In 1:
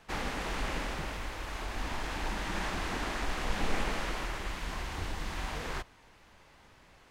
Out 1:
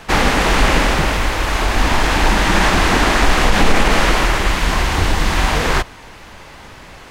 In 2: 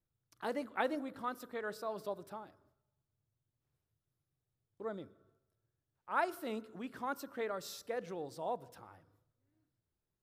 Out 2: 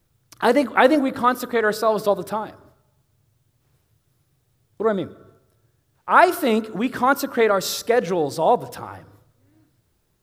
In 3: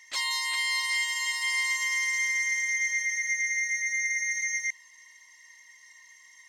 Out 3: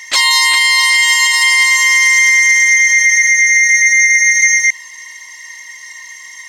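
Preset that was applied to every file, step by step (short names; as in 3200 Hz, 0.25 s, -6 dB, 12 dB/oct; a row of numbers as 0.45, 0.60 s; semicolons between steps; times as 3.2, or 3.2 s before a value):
limiter -23 dBFS; normalise peaks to -2 dBFS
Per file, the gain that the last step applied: +21.0, +21.0, +21.0 dB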